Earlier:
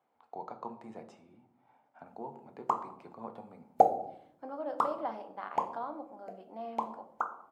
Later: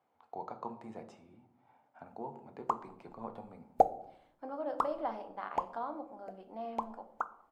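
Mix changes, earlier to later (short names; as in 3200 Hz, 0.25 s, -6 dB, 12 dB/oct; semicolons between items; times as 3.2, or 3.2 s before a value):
background: send -9.5 dB; master: remove HPF 120 Hz 12 dB/oct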